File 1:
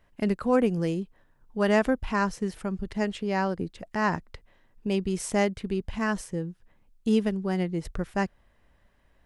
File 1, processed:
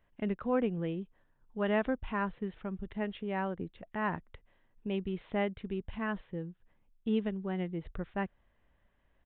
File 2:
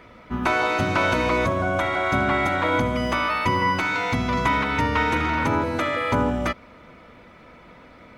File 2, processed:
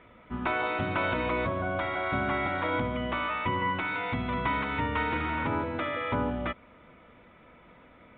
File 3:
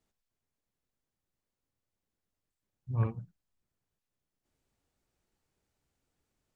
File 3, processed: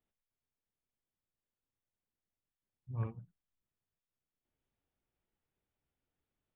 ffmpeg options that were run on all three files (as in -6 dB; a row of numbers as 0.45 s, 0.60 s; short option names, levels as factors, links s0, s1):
-af "aresample=8000,aresample=44100,volume=0.422"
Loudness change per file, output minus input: -7.5 LU, -7.5 LU, -7.5 LU